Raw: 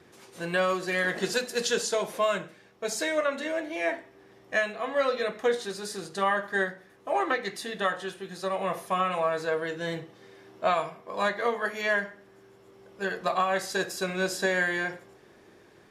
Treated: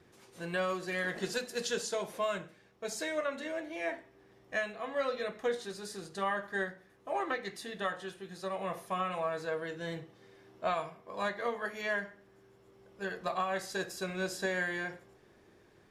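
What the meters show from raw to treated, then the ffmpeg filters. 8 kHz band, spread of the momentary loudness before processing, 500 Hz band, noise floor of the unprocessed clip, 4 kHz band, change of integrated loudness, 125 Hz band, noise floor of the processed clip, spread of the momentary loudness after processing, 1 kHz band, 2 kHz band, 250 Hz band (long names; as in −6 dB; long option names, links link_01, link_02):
−7.5 dB, 9 LU, −7.0 dB, −56 dBFS, −7.5 dB, −7.0 dB, −5.0 dB, −63 dBFS, 9 LU, −7.5 dB, −7.5 dB, −6.0 dB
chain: -af "lowshelf=frequency=100:gain=10,volume=-7.5dB"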